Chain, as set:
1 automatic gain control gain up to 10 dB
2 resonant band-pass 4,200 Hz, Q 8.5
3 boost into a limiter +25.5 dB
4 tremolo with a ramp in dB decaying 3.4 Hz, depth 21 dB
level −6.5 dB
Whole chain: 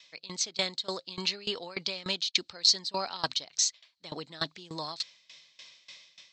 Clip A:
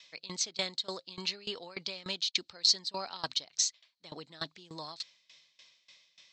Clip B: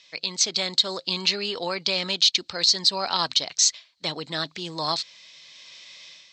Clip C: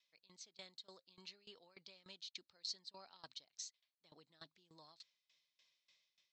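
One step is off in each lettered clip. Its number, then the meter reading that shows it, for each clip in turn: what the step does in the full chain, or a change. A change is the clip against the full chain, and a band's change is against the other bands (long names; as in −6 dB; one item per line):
1, change in momentary loudness spread −1 LU
4, change in momentary loudness spread −7 LU
3, change in crest factor +2.5 dB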